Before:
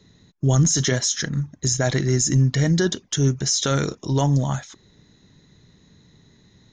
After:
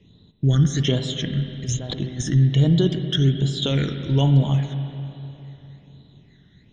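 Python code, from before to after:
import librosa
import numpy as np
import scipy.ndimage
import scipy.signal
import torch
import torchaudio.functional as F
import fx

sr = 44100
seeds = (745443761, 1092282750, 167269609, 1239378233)

y = fx.high_shelf_res(x, sr, hz=4100.0, db=-8.0, q=3.0)
y = fx.over_compress(y, sr, threshold_db=-26.0, ratio=-0.5, at=(1.56, 2.31))
y = fx.phaser_stages(y, sr, stages=12, low_hz=770.0, high_hz=2100.0, hz=1.2, feedback_pct=35)
y = fx.rev_spring(y, sr, rt60_s=3.2, pass_ms=(50, 59), chirp_ms=75, drr_db=7.0)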